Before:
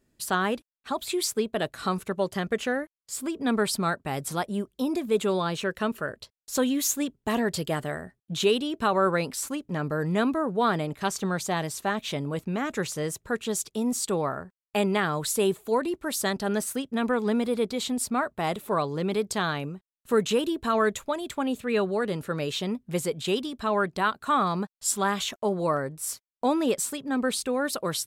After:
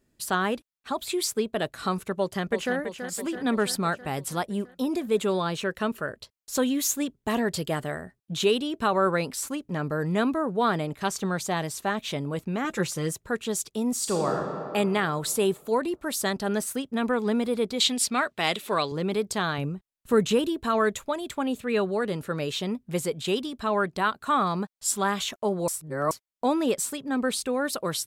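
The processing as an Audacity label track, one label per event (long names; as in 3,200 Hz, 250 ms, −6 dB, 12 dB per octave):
2.150000	2.760000	delay throw 330 ms, feedback 65%, level −8.5 dB
12.640000	13.130000	comb filter 5.8 ms
13.940000	14.350000	thrown reverb, RT60 2.6 s, DRR 1 dB
17.800000	18.920000	meter weighting curve D
19.580000	20.470000	low-shelf EQ 170 Hz +9.5 dB
25.680000	26.110000	reverse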